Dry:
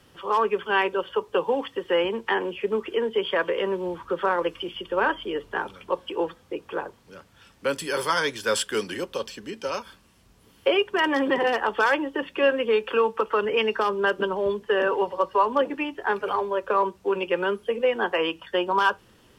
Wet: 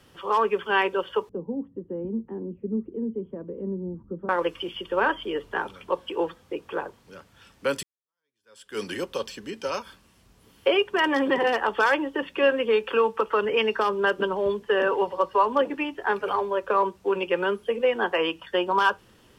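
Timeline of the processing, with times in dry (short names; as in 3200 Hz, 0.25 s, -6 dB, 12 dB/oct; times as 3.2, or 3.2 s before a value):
1.29–4.29 synth low-pass 220 Hz, resonance Q 2.3
7.83–8.83 fade in exponential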